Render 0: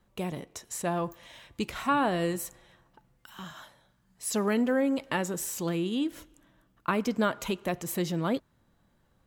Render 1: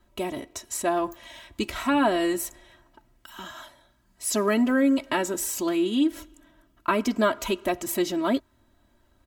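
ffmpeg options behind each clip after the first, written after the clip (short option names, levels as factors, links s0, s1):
-af "aecho=1:1:3.1:0.9,volume=1.33"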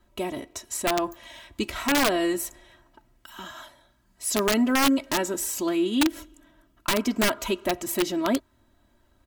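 -af "aeval=exprs='(mod(5.62*val(0)+1,2)-1)/5.62':c=same"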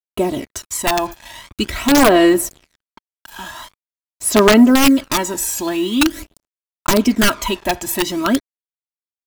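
-af "acrusher=bits=6:mix=0:aa=0.5,aphaser=in_gain=1:out_gain=1:delay=1.2:decay=0.53:speed=0.45:type=sinusoidal,volume=2.24"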